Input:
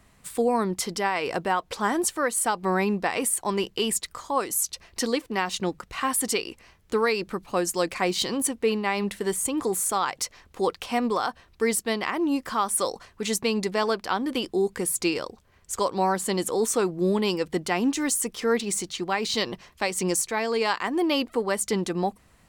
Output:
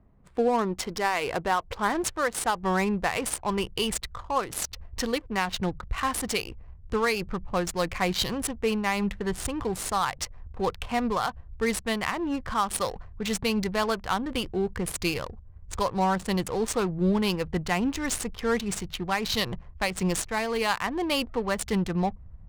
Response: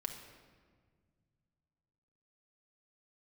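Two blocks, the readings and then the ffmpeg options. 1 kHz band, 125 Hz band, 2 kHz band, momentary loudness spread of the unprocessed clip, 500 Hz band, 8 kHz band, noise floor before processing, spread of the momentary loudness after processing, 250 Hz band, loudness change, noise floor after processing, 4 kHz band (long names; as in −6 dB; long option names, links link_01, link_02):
−1.0 dB, +3.5 dB, −0.5 dB, 5 LU, −3.0 dB, −6.0 dB, −59 dBFS, 6 LU, −1.5 dB, −2.0 dB, −48 dBFS, −1.0 dB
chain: -af "asubboost=boost=10.5:cutoff=92,adynamicsmooth=sensitivity=7:basefreq=610"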